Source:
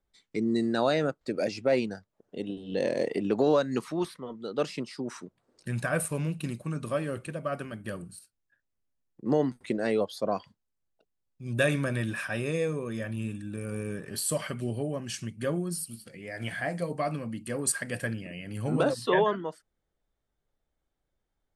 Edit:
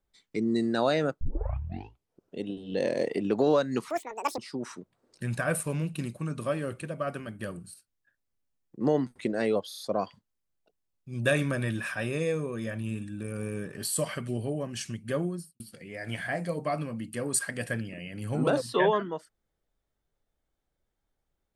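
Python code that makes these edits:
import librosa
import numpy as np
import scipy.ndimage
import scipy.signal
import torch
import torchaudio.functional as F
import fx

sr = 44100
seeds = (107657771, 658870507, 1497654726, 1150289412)

y = fx.studio_fade_out(x, sr, start_s=15.57, length_s=0.36)
y = fx.edit(y, sr, fx.tape_start(start_s=1.21, length_s=1.18),
    fx.speed_span(start_s=3.9, length_s=0.93, speed=1.94),
    fx.stutter(start_s=10.13, slice_s=0.03, count=5), tone=tone)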